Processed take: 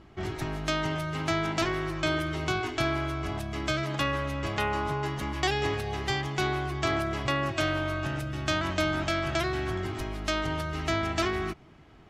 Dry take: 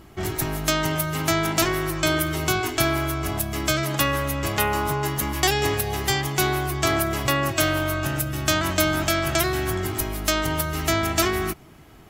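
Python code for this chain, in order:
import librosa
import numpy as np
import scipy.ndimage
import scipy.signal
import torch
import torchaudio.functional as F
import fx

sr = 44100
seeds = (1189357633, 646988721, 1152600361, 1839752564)

y = scipy.signal.sosfilt(scipy.signal.butter(2, 4400.0, 'lowpass', fs=sr, output='sos'), x)
y = F.gain(torch.from_numpy(y), -5.5).numpy()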